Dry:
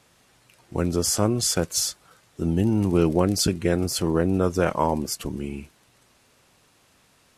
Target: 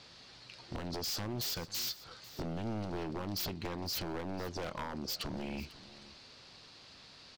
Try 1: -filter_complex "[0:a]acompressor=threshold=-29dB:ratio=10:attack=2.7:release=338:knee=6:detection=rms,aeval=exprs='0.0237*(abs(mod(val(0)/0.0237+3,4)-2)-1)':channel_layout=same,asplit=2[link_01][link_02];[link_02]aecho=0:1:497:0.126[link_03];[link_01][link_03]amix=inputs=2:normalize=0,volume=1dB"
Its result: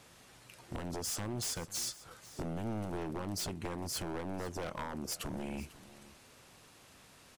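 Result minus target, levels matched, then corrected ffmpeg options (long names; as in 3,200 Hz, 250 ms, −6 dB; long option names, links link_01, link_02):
4,000 Hz band −3.5 dB
-filter_complex "[0:a]acompressor=threshold=-29dB:ratio=10:attack=2.7:release=338:knee=6:detection=rms,lowpass=frequency=4500:width_type=q:width=4.4,aeval=exprs='0.0237*(abs(mod(val(0)/0.0237+3,4)-2)-1)':channel_layout=same,asplit=2[link_01][link_02];[link_02]aecho=0:1:497:0.126[link_03];[link_01][link_03]amix=inputs=2:normalize=0,volume=1dB"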